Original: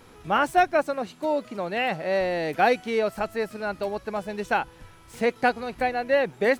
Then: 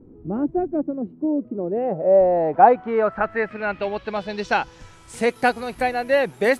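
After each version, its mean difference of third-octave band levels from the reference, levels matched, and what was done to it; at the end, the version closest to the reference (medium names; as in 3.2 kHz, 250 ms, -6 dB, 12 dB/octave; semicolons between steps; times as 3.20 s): 6.5 dB: low-pass sweep 310 Hz -> 11 kHz, 1.41–5.37 s; trim +3 dB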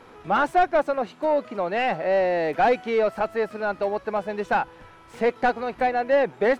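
3.5 dB: overdrive pedal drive 15 dB, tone 1 kHz, clips at -9 dBFS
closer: second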